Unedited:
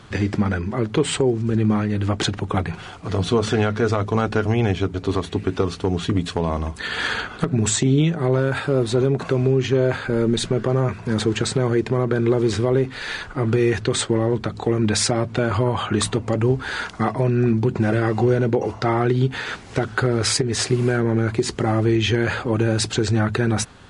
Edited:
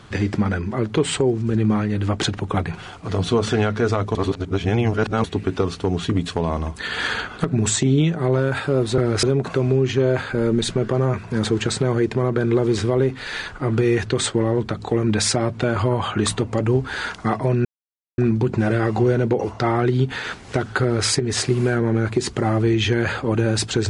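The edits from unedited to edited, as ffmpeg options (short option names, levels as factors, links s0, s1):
-filter_complex "[0:a]asplit=6[s0][s1][s2][s3][s4][s5];[s0]atrim=end=4.152[s6];[s1]atrim=start=4.148:end=5.242,asetpts=PTS-STARTPTS,areverse[s7];[s2]atrim=start=5.238:end=8.982[s8];[s3]atrim=start=20.038:end=20.292[s9];[s4]atrim=start=8.978:end=17.4,asetpts=PTS-STARTPTS,afade=t=out:st=8.418:d=0.004:c=hsin,apad=pad_dur=0.53[s10];[s5]atrim=start=17.4,asetpts=PTS-STARTPTS,afade=t=in:d=0.004:c=hsin[s11];[s6][s7]acrossfade=d=0.004:c1=hsin:c2=hsin[s12];[s12][s8]acrossfade=d=0.004:c1=hsin:c2=hsin[s13];[s13][s9]acrossfade=d=0.004:c1=hsin:c2=hsin[s14];[s10][s11]concat=n=2:v=0:a=1[s15];[s14][s15]acrossfade=d=0.004:c1=hsin:c2=hsin"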